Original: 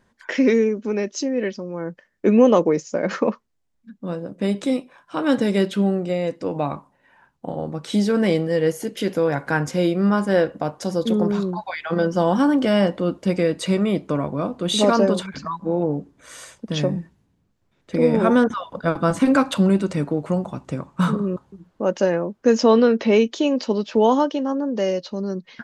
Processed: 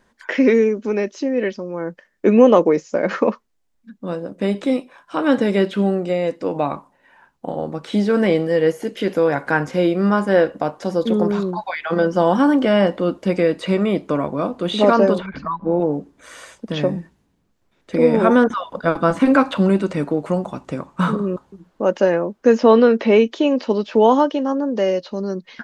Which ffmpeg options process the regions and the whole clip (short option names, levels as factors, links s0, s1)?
-filter_complex "[0:a]asettb=1/sr,asplit=3[s0][s1][s2];[s0]atrim=end=15.184[s3];[s1]atrim=start=15.18:end=15.8,asetpts=PTS-STARTPTS,afade=t=in:d=0.004:c=qsin,afade=t=out:st=0.616:d=0.004:c=qsin,lowpass=2500,lowshelf=f=86:g=10.5,bandreject=f=1700:w=22[s4];[s2]atrim=start=15.796[s5];[s3][s4]acrossfade=d=0.004:c1=hsin:c2=qsin[s6];[s6][s5]acrossfade=d=0.004:c1=qsin:c2=hsin,acrossover=split=3300[s7][s8];[s8]acompressor=threshold=0.00398:ratio=4:attack=1:release=60[s9];[s7][s9]amix=inputs=2:normalize=0,equalizer=f=110:w=1:g=-8.5,volume=1.58"